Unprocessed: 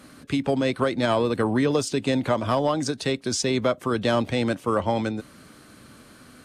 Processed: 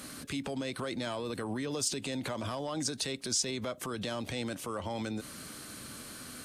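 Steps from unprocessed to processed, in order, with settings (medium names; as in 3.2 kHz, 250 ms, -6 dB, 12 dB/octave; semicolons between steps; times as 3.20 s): compression, threshold -27 dBFS, peak gain reduction 9.5 dB; peak limiter -28.5 dBFS, peak gain reduction 10.5 dB; treble shelf 3.5 kHz +11.5 dB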